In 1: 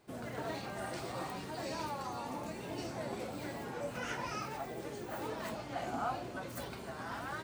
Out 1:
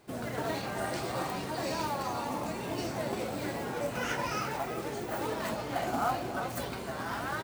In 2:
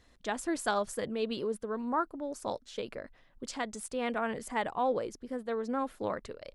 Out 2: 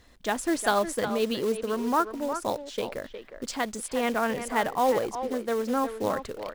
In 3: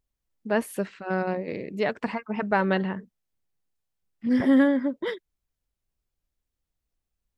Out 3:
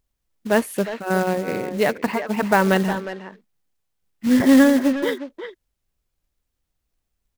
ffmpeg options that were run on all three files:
-filter_complex "[0:a]acrusher=bits=4:mode=log:mix=0:aa=0.000001,asplit=2[s0][s1];[s1]adelay=360,highpass=300,lowpass=3400,asoftclip=type=hard:threshold=0.126,volume=0.355[s2];[s0][s2]amix=inputs=2:normalize=0,volume=2"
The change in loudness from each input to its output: +6.5 LU, +6.5 LU, +6.5 LU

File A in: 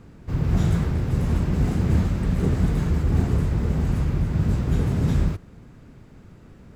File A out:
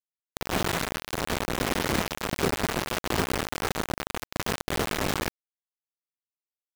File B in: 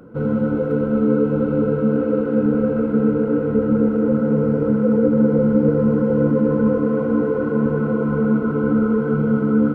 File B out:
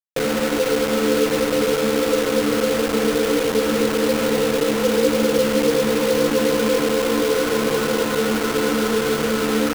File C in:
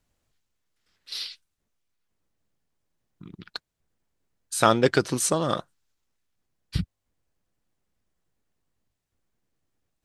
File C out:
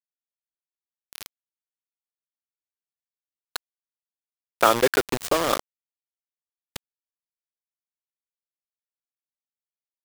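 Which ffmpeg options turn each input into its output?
-filter_complex "[0:a]acrossover=split=290 4000:gain=0.1 1 0.178[s0][s1][s2];[s0][s1][s2]amix=inputs=3:normalize=0,asplit=2[s3][s4];[s4]acompressor=threshold=0.0447:ratio=6,volume=0.891[s5];[s3][s5]amix=inputs=2:normalize=0,acrusher=bits=3:mix=0:aa=0.000001"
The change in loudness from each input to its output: -6.0 LU, -1.0 LU, +3.0 LU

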